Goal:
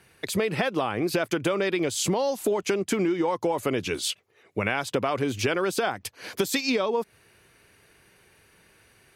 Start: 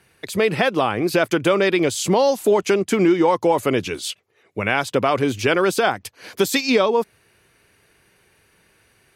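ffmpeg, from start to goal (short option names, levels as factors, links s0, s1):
-af "acompressor=threshold=0.0794:ratio=6"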